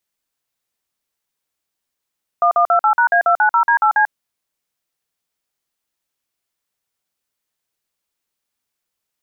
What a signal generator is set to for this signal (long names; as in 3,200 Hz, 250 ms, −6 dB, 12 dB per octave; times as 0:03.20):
touch tones "1128#A290D8C", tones 92 ms, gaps 48 ms, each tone −13 dBFS